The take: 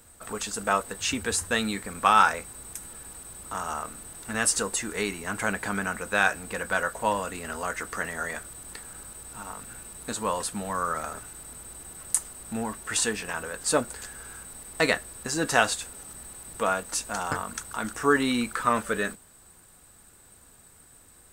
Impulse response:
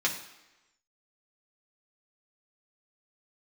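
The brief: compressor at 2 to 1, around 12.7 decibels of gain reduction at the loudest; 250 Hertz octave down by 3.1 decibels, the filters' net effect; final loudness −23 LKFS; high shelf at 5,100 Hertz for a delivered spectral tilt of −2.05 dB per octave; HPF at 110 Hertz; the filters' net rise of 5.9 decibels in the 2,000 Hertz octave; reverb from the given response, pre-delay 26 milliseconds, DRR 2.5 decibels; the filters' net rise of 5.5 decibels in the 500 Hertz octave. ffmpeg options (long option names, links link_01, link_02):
-filter_complex "[0:a]highpass=110,equalizer=frequency=250:width_type=o:gain=-5.5,equalizer=frequency=500:width_type=o:gain=7.5,equalizer=frequency=2000:width_type=o:gain=8.5,highshelf=frequency=5100:gain=-6,acompressor=threshold=-35dB:ratio=2,asplit=2[link_01][link_02];[1:a]atrim=start_sample=2205,adelay=26[link_03];[link_02][link_03]afir=irnorm=-1:irlink=0,volume=-11.5dB[link_04];[link_01][link_04]amix=inputs=2:normalize=0,volume=9.5dB"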